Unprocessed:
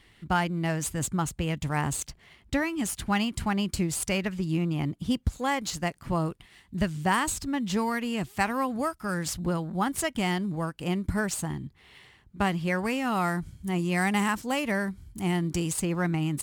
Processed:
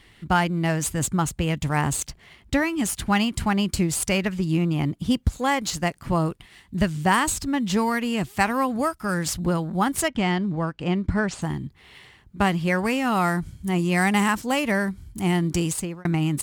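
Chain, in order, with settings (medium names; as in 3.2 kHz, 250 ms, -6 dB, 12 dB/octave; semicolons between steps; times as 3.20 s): 10.08–11.42 s: distance through air 120 m; 15.65–16.05 s: fade out; trim +5 dB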